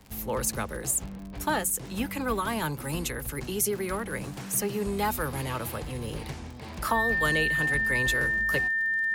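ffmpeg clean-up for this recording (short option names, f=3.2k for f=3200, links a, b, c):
-af "adeclick=t=4,bandreject=f=1.8k:w=30"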